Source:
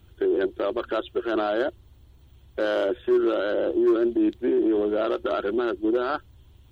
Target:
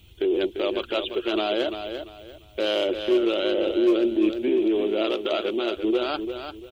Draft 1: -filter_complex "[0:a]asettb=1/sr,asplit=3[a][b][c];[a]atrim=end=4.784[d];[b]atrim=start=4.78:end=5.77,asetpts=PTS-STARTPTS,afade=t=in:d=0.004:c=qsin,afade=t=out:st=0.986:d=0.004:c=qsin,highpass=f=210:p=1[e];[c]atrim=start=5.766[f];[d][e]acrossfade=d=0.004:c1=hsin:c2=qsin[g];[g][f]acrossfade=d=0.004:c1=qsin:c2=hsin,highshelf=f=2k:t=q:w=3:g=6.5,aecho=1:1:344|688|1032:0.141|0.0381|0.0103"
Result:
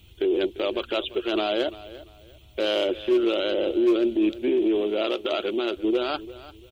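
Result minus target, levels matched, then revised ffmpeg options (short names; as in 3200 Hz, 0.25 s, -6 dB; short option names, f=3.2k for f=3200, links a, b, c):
echo-to-direct -9 dB
-filter_complex "[0:a]asettb=1/sr,asplit=3[a][b][c];[a]atrim=end=4.784[d];[b]atrim=start=4.78:end=5.77,asetpts=PTS-STARTPTS,afade=t=in:d=0.004:c=qsin,afade=t=out:st=0.986:d=0.004:c=qsin,highpass=f=210:p=1[e];[c]atrim=start=5.766[f];[d][e]acrossfade=d=0.004:c1=hsin:c2=qsin[g];[g][f]acrossfade=d=0.004:c1=qsin:c2=hsin,highshelf=f=2k:t=q:w=3:g=6.5,aecho=1:1:344|688|1032:0.398|0.107|0.029"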